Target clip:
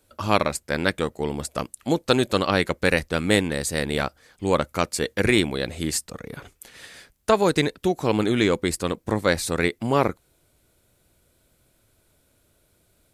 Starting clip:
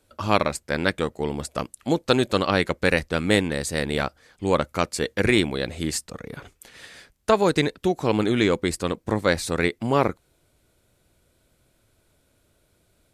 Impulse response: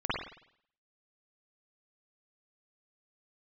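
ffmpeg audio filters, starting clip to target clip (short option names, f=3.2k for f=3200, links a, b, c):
-af "highshelf=f=11k:g=9"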